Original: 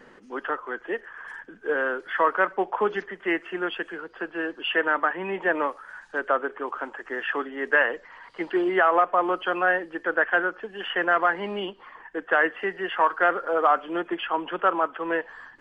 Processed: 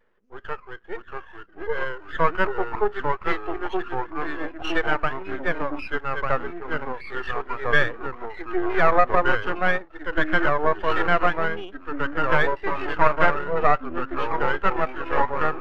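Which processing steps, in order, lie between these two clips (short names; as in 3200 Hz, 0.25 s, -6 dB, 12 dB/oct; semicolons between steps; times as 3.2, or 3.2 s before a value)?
HPF 130 Hz 24 dB/oct; bell 280 Hz -10.5 dB 0.33 oct; echoes that change speed 0.578 s, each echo -2 st, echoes 3; half-wave rectifier; spectral expander 1.5:1; gain +5 dB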